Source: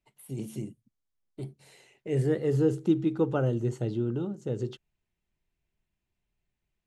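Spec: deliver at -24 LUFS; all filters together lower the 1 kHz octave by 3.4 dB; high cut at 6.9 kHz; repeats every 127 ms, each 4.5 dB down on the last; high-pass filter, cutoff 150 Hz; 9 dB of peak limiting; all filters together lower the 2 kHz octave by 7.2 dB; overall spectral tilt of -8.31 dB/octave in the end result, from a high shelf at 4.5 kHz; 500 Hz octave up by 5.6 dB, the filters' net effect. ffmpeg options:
-af "highpass=150,lowpass=6900,equalizer=f=500:t=o:g=8.5,equalizer=f=1000:t=o:g=-8,equalizer=f=2000:t=o:g=-6.5,highshelf=f=4500:g=-3.5,alimiter=limit=0.119:level=0:latency=1,aecho=1:1:127|254|381|508|635|762|889|1016|1143:0.596|0.357|0.214|0.129|0.0772|0.0463|0.0278|0.0167|0.01,volume=1.5"

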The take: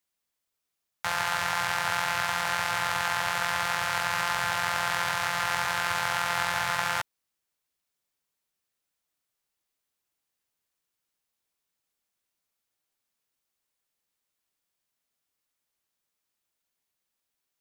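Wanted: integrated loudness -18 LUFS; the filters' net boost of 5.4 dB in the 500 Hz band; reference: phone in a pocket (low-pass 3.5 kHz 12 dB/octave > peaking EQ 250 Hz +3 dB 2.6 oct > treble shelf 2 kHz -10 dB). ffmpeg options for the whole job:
-af "lowpass=3500,equalizer=f=250:t=o:w=2.6:g=3,equalizer=f=500:t=o:g=6.5,highshelf=f=2000:g=-10,volume=3.76"

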